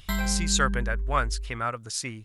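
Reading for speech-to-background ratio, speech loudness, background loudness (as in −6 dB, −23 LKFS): 2.5 dB, −28.5 LKFS, −31.0 LKFS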